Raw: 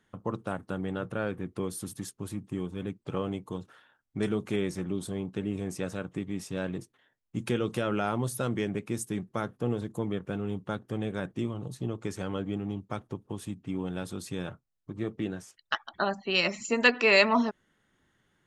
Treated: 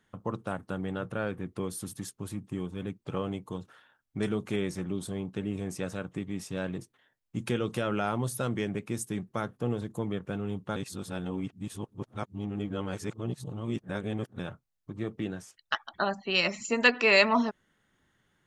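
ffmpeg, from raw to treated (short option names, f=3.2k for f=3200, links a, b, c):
-filter_complex "[0:a]asplit=3[a][b][c];[a]atrim=end=10.762[d];[b]atrim=start=10.758:end=14.392,asetpts=PTS-STARTPTS,areverse[e];[c]atrim=start=14.388[f];[d][e]acrossfade=d=0.004:c1=hsin:c2=hsin[g];[g][f]acrossfade=d=0.004:c1=hsin:c2=hsin,equalizer=f=340:w=1.5:g=-2"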